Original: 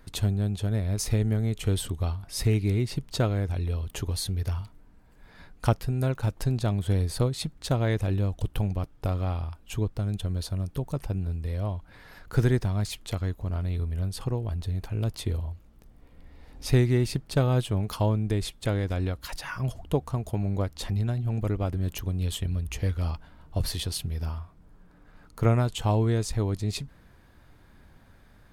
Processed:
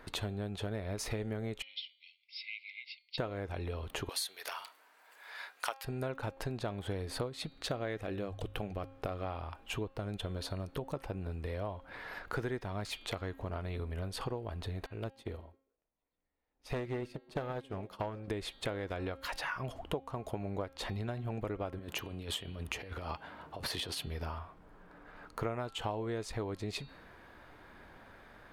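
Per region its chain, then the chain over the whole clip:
0:01.62–0:03.18: linear-phase brick-wall band-pass 2,000–5,600 Hz + high-frequency loss of the air 140 metres + expander for the loud parts, over −52 dBFS
0:04.09–0:05.85: high-pass filter 600 Hz + spectral tilt +3.5 dB per octave
0:07.33–0:09.25: parametric band 930 Hz −8.5 dB 0.2 octaves + mains-hum notches 50/100 Hz
0:14.86–0:18.28: hard clipping −19.5 dBFS + echo through a band-pass that steps 133 ms, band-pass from 200 Hz, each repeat 0.7 octaves, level −9 dB + expander for the loud parts 2.5 to 1, over −45 dBFS
0:21.79–0:24.07: high-pass filter 94 Hz + compressor whose output falls as the input rises −33 dBFS, ratio −0.5
whole clip: bass and treble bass −14 dB, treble −12 dB; hum removal 269.1 Hz, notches 17; downward compressor 4 to 1, threshold −43 dBFS; level +7 dB

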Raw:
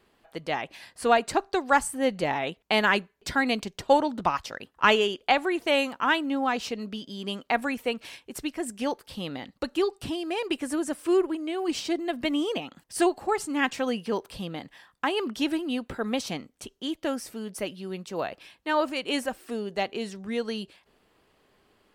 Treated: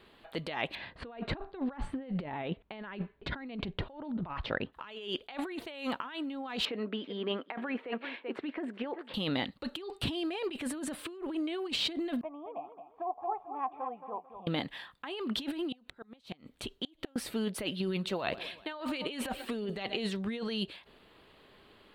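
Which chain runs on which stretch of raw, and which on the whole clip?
0:00.75–0:04.73: low-pass filter 2,900 Hz + spectral tilt −2 dB per octave
0:06.65–0:09.14: Chebyshev band-pass filter 310–1,800 Hz + single-tap delay 384 ms −18.5 dB
0:12.21–0:14.47: formant resonators in series a + repeating echo 221 ms, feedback 29%, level −9.5 dB
0:15.72–0:17.16: low-shelf EQ 71 Hz +6.5 dB + downward compressor 2 to 1, threshold −41 dBFS + gate with flip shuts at −29 dBFS, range −31 dB
0:17.80–0:20.00: repeating echo 126 ms, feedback 56%, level −22.5 dB + phase shifter 1.6 Hz, delay 1.6 ms, feedback 30%
whole clip: high shelf with overshoot 4,700 Hz −6 dB, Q 3; notch filter 750 Hz, Q 22; compressor whose output falls as the input rises −35 dBFS, ratio −1; level −2 dB

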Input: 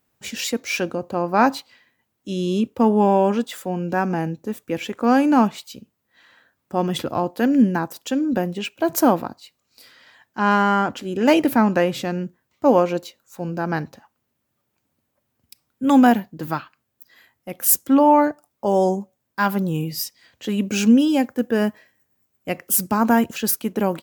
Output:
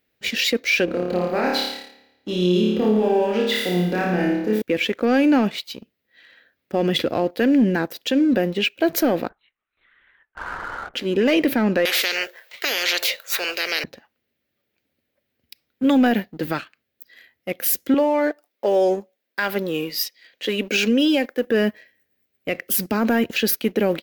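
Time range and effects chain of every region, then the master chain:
0:00.85–0:04.62: downward compressor 2.5 to 1, threshold −26 dBFS + flutter between parallel walls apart 4.8 metres, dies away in 1 s + one half of a high-frequency compander decoder only
0:09.29–0:10.94: resonant band-pass 1,200 Hz, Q 2.7 + downward compressor 3 to 1, threshold −29 dBFS + linear-prediction vocoder at 8 kHz whisper
0:11.85–0:13.84: Butterworth high-pass 520 Hz + every bin compressed towards the loudest bin 10 to 1
0:17.94–0:21.47: high-pass filter 330 Hz + downward compressor 4 to 1, threshold −18 dBFS
whole clip: octave-band graphic EQ 125/500/1,000/2,000/4,000/8,000 Hz −6/+6/−11/+8/+6/−10 dB; leveller curve on the samples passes 1; brickwall limiter −10.5 dBFS

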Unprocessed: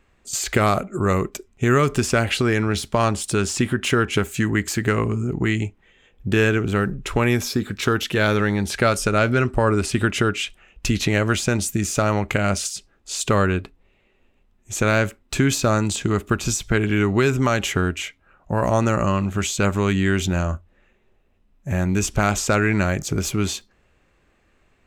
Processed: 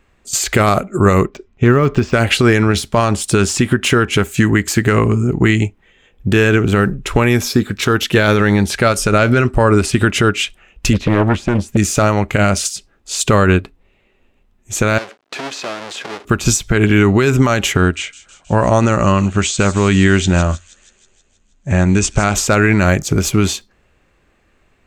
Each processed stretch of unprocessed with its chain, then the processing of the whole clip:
0:01.26–0:02.13: Bessel low-pass filter 3,700 Hz, order 4 + de-essing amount 95%
0:10.93–0:11.77: low-pass filter 1,200 Hz 6 dB per octave + highs frequency-modulated by the lows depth 0.99 ms
0:14.98–0:16.25: each half-wave held at its own peak + downward compressor 4 to 1, threshold −25 dBFS + band-pass filter 440–4,900 Hz
0:17.77–0:22.34: elliptic low-pass filter 8,900 Hz, stop band 50 dB + delay with a high-pass on its return 159 ms, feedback 63%, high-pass 4,800 Hz, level −8.5 dB
whole clip: boost into a limiter +11 dB; expander for the loud parts 1.5 to 1, over −21 dBFS

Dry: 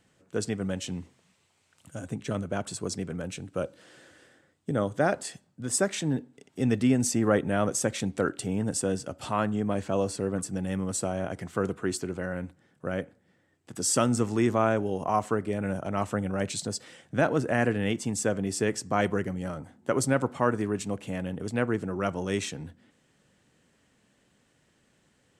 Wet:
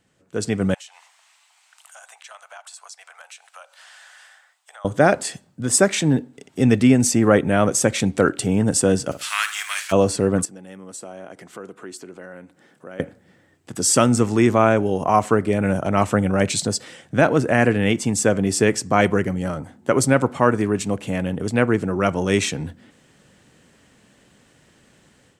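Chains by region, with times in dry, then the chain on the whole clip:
0:00.74–0:04.85: Butterworth high-pass 720 Hz 48 dB per octave + downward compressor 3 to 1, threshold −54 dBFS
0:09.11–0:09.91: spectral envelope flattened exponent 0.6 + high-pass filter 1,400 Hz 24 dB per octave + flutter between parallel walls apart 9.7 metres, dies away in 0.27 s
0:10.45–0:13.00: downward compressor 2 to 1, threshold −57 dBFS + high-pass filter 240 Hz
whole clip: dynamic equaliser 2,300 Hz, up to +4 dB, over −52 dBFS, Q 6.4; automatic gain control gain up to 11.5 dB

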